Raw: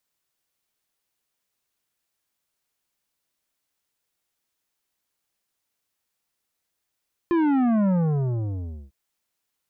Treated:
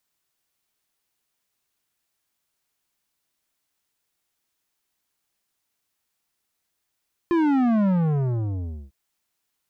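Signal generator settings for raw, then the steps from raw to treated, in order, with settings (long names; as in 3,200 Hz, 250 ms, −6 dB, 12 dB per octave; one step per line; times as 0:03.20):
bass drop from 350 Hz, over 1.60 s, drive 11 dB, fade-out 1.03 s, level −19 dB
in parallel at −11.5 dB: hard clipping −30.5 dBFS
on the sum: parametric band 520 Hz −5 dB 0.21 octaves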